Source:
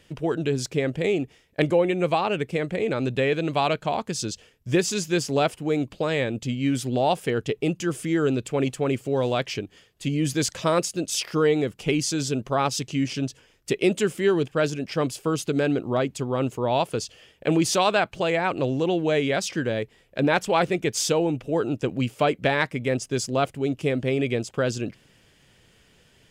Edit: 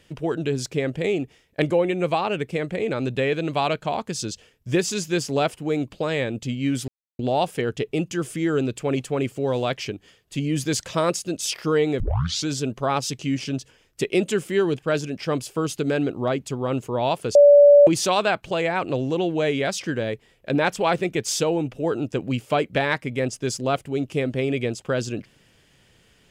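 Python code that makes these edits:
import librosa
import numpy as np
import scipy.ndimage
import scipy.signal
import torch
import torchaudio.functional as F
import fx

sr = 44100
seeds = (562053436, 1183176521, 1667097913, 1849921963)

y = fx.edit(x, sr, fx.insert_silence(at_s=6.88, length_s=0.31),
    fx.tape_start(start_s=11.69, length_s=0.47),
    fx.bleep(start_s=17.04, length_s=0.52, hz=577.0, db=-7.5), tone=tone)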